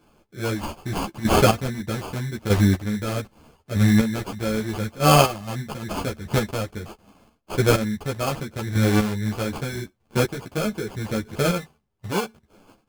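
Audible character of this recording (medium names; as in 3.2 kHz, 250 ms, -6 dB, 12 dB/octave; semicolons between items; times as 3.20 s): chopped level 0.8 Hz, depth 65%, duty 20%; aliases and images of a low sample rate 1.9 kHz, jitter 0%; a shimmering, thickened sound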